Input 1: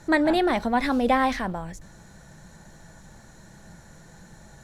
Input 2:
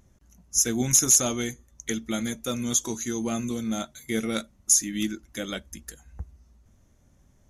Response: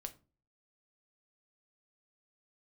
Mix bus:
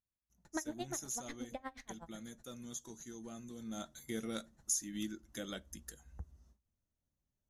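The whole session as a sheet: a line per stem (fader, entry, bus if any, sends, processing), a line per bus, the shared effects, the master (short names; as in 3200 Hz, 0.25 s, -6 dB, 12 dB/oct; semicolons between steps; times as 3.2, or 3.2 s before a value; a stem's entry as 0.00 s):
-3.0 dB, 0.45 s, send -22 dB, dB-linear tremolo 8.2 Hz, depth 36 dB; auto duck -14 dB, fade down 1.20 s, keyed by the second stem
3.53 s -20 dB -> 3.85 s -8.5 dB, 0.00 s, send -11.5 dB, gate with hold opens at -48 dBFS; bell 2300 Hz -7.5 dB 0.31 oct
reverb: on, RT60 0.35 s, pre-delay 6 ms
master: compressor 1.5:1, threshold -45 dBFS, peak gain reduction 8.5 dB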